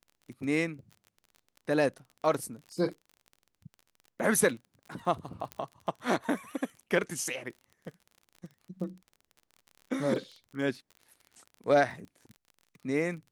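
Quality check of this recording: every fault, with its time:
surface crackle 32 per second −41 dBFS
0:05.52: click −22 dBFS

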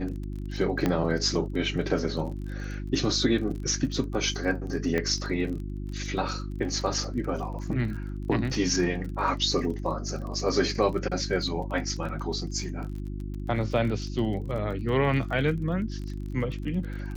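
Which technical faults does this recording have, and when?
surface crackle 27 per second −35 dBFS
mains hum 50 Hz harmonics 7 −34 dBFS
0:00.86: click −12 dBFS
0:04.98: click −15 dBFS
0:12.09: drop-out 3.5 ms

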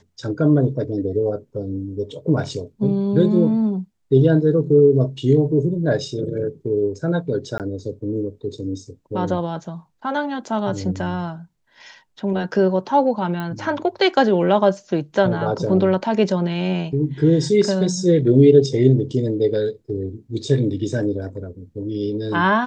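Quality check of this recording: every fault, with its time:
0:07.58–0:07.60: drop-out 18 ms
0:13.40: click −16 dBFS

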